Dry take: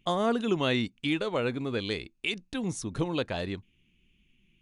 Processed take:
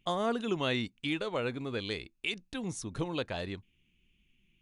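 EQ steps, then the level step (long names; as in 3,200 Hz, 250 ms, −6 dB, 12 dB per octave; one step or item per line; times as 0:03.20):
parametric band 240 Hz −2.5 dB 2 octaves
−3.0 dB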